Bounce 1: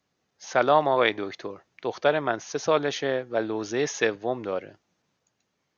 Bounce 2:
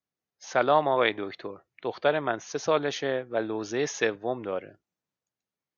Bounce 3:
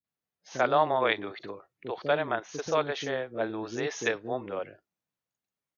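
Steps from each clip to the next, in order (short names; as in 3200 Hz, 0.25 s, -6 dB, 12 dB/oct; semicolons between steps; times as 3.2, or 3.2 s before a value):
spectral noise reduction 15 dB; gain -2 dB
three bands offset in time lows, mids, highs 40/80 ms, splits 370/5700 Hz; gain -1 dB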